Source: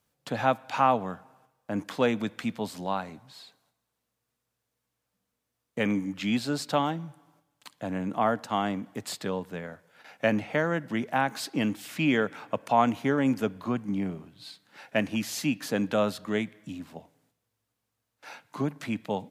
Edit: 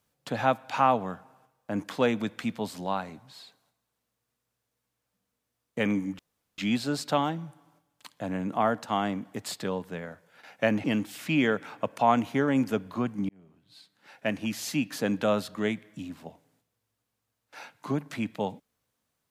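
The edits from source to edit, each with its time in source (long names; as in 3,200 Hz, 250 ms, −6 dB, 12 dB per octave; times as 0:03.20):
0:06.19: splice in room tone 0.39 s
0:10.45–0:11.54: remove
0:13.99–0:15.93: fade in equal-power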